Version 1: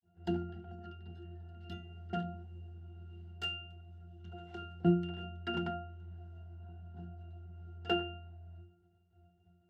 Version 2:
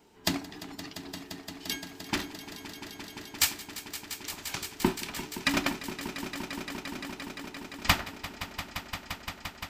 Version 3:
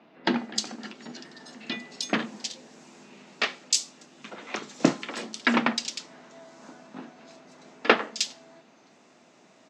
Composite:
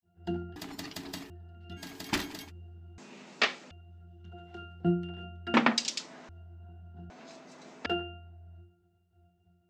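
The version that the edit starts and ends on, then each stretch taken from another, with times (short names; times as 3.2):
1
0.56–1.3 from 2
1.81–2.47 from 2, crossfade 0.10 s
2.98–3.71 from 3
5.54–6.29 from 3
7.1–7.86 from 3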